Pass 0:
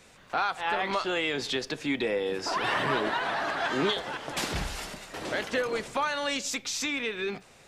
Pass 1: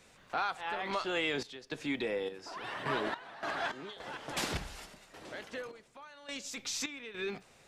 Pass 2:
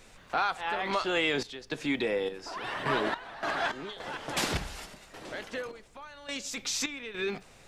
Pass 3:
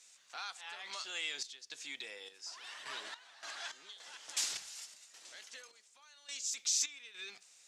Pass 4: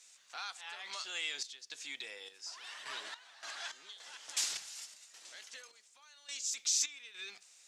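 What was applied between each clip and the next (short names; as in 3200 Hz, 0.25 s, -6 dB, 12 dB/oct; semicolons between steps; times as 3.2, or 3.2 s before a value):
random-step tremolo, depth 90%; gain -3.5 dB
added noise brown -66 dBFS; gain +5 dB
band-pass 6800 Hz, Q 1.7; gain +3 dB
low shelf 490 Hz -3.5 dB; gain +1 dB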